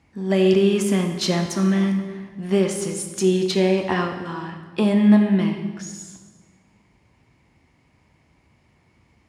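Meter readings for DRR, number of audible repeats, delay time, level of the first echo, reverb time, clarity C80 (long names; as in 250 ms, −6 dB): 5.0 dB, no echo audible, no echo audible, no echo audible, 1.5 s, 9.0 dB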